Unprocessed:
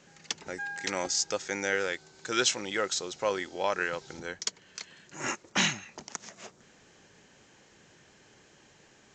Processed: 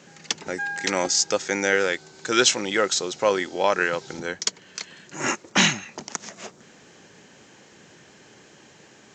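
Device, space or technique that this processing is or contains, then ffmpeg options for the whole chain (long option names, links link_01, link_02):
filter by subtraction: -filter_complex "[0:a]asplit=2[link_01][link_02];[link_02]lowpass=200,volume=-1[link_03];[link_01][link_03]amix=inputs=2:normalize=0,volume=7.5dB"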